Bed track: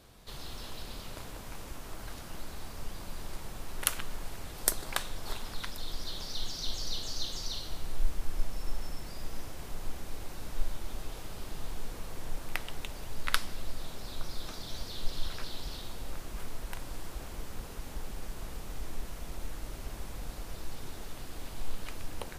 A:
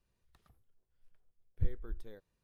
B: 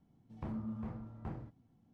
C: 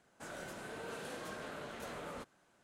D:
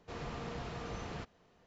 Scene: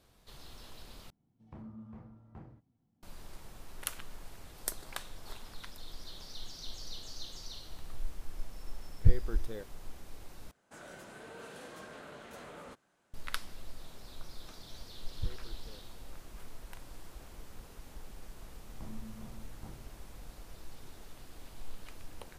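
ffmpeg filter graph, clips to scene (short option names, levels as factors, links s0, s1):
-filter_complex "[2:a]asplit=2[s0][s1];[1:a]asplit=2[s2][s3];[0:a]volume=0.376[s4];[s2]dynaudnorm=f=200:g=3:m=3.76[s5];[s4]asplit=3[s6][s7][s8];[s6]atrim=end=1.104[s9];[s0]atrim=end=1.93,asetpts=PTS-STARTPTS,volume=0.422[s10];[s7]atrim=start=3.026:end=10.514[s11];[3:a]atrim=end=2.63,asetpts=PTS-STARTPTS,volume=0.668[s12];[s8]atrim=start=13.136[s13];[s5]atrim=end=2.43,asetpts=PTS-STARTPTS,volume=0.794,afade=t=in:d=0.004:c=hsin,afade=t=out:st=2.426:d=0.004:c=hsin,adelay=7440[s14];[s3]atrim=end=2.43,asetpts=PTS-STARTPTS,volume=0.668,afade=t=in:d=0.004:c=hsin,afade=t=out:st=2.426:d=0.004:c=hsin,adelay=13610[s15];[s1]atrim=end=1.93,asetpts=PTS-STARTPTS,volume=0.422,afade=t=in:d=0.004:c=hsin,afade=t=out:st=1.926:d=0.004:c=hsin,adelay=18380[s16];[s9][s10]acrossfade=d=0.004:c1=hsin:c2=hsin[s17];[s17][s11]acrossfade=d=0.004:c1=hsin:c2=hsin[s18];[s18][s12]acrossfade=d=0.004:c1=hsin:c2=hsin[s19];[s19][s13]acrossfade=d=0.004:c1=hsin:c2=hsin[s20];[s20][s14][s15][s16]amix=inputs=4:normalize=0"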